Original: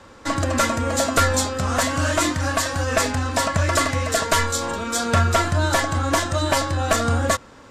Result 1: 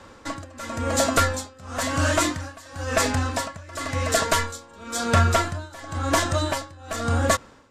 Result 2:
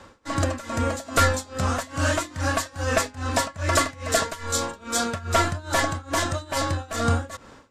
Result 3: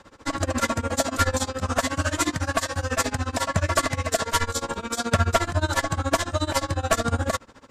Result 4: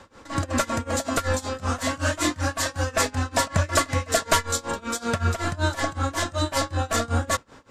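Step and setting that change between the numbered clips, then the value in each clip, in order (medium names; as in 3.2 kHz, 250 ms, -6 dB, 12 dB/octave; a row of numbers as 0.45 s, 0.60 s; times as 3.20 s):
tremolo, rate: 0.96 Hz, 2.4 Hz, 14 Hz, 5.3 Hz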